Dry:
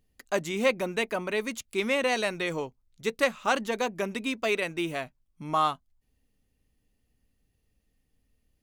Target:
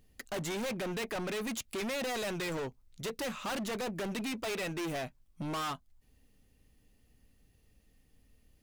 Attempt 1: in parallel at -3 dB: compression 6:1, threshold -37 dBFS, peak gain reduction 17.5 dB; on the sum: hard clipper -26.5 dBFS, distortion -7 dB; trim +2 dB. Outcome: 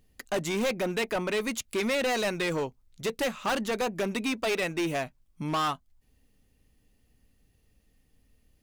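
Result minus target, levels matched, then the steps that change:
hard clipper: distortion -5 dB
change: hard clipper -36 dBFS, distortion -2 dB

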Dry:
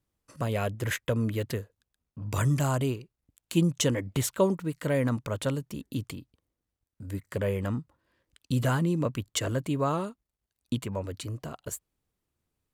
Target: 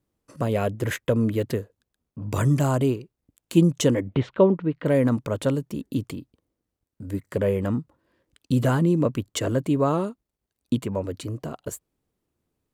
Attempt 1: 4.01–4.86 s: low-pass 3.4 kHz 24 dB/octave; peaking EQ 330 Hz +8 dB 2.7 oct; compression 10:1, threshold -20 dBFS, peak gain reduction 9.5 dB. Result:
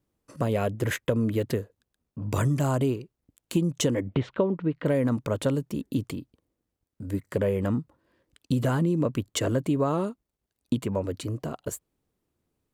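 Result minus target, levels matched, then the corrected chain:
compression: peak gain reduction +9.5 dB
4.01–4.86 s: low-pass 3.4 kHz 24 dB/octave; peaking EQ 330 Hz +8 dB 2.7 oct

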